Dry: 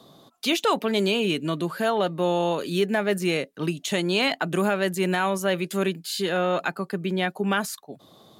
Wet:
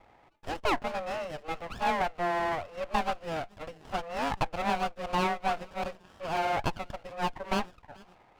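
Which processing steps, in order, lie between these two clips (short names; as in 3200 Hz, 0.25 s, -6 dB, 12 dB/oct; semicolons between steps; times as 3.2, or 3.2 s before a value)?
thin delay 0.432 s, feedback 46%, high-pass 1800 Hz, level -17 dB; mistuned SSB +160 Hz 550–2200 Hz; running maximum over 17 samples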